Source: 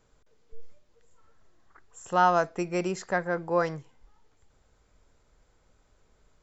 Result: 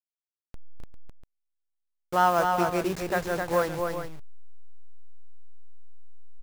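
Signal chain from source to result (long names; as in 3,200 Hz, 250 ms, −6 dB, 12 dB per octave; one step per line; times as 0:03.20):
hold until the input has moved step −32.5 dBFS
multi-tap delay 259/399 ms −4.5/−10 dB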